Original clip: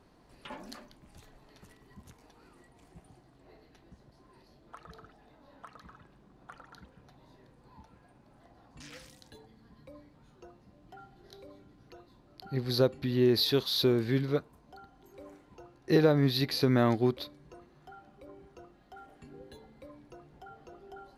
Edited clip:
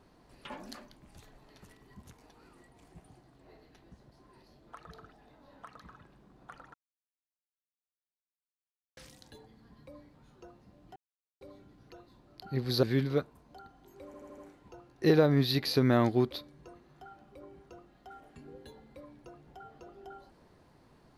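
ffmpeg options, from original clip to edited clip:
ffmpeg -i in.wav -filter_complex "[0:a]asplit=10[link_01][link_02][link_03][link_04][link_05][link_06][link_07][link_08][link_09][link_10];[link_01]atrim=end=6.74,asetpts=PTS-STARTPTS,afade=type=out:start_time=6.736:duration=0.004:curve=hsin[link_11];[link_02]atrim=start=6.74:end=8.97,asetpts=PTS-STARTPTS,volume=0[link_12];[link_03]atrim=start=8.97:end=10.96,asetpts=PTS-STARTPTS,afade=type=in:duration=0.004:curve=hsin,afade=type=out:start_time=1.986:duration=0.004:curve=hsin[link_13];[link_04]atrim=start=10.96:end=11.41,asetpts=PTS-STARTPTS,volume=0[link_14];[link_05]atrim=start=11.41:end=12.832,asetpts=PTS-STARTPTS,afade=type=in:duration=0.004:curve=hsin[link_15];[link_06]atrim=start=14.008:end=15.322[link_16];[link_07]atrim=start=15.238:end=15.322[link_17];[link_08]atrim=start=15.238:end=15.322[link_18];[link_09]atrim=start=15.238:end=15.322[link_19];[link_10]atrim=start=15.238[link_20];[link_11][link_12][link_13][link_14][link_15]concat=n=5:v=0:a=1[link_21];[link_21][link_16]acrossfade=duration=0.004:curve1=hsin:curve2=hsin[link_22];[link_22][link_17]acrossfade=duration=0.004:curve1=hsin:curve2=hsin[link_23];[link_23][link_18]acrossfade=duration=0.004:curve1=hsin:curve2=hsin[link_24];[link_24][link_19]acrossfade=duration=0.004:curve1=hsin:curve2=hsin[link_25];[link_25][link_20]acrossfade=duration=0.004:curve1=hsin:curve2=hsin" out.wav

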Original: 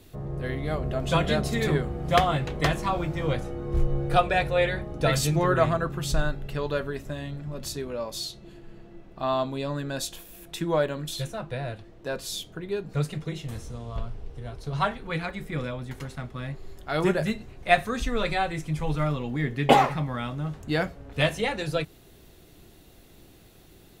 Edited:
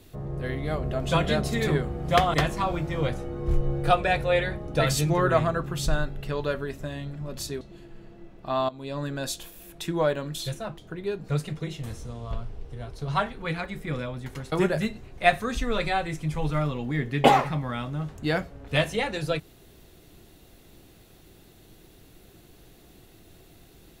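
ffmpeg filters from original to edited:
ffmpeg -i in.wav -filter_complex "[0:a]asplit=6[link_01][link_02][link_03][link_04][link_05][link_06];[link_01]atrim=end=2.342[link_07];[link_02]atrim=start=2.598:end=7.872[link_08];[link_03]atrim=start=8.338:end=9.42,asetpts=PTS-STARTPTS,afade=type=out:start_time=1.078:duration=0.004:curve=hsin:silence=0.149624[link_09];[link_04]atrim=start=9.42:end=11.512,asetpts=PTS-STARTPTS,afade=type=in:duration=0.34:silence=0.149624[link_10];[link_05]atrim=start=12.428:end=16.172[link_11];[link_06]atrim=start=16.968[link_12];[link_07][link_08]acrossfade=duration=0.004:curve1=hsin:curve2=hsin[link_13];[link_09][link_10]concat=n=2:v=0:a=1[link_14];[link_13][link_14]acrossfade=duration=0.004:curve1=hsin:curve2=hsin[link_15];[link_15][link_11]acrossfade=duration=0.004:curve1=hsin:curve2=hsin[link_16];[link_16][link_12]acrossfade=duration=0.004:curve1=hsin:curve2=hsin" out.wav

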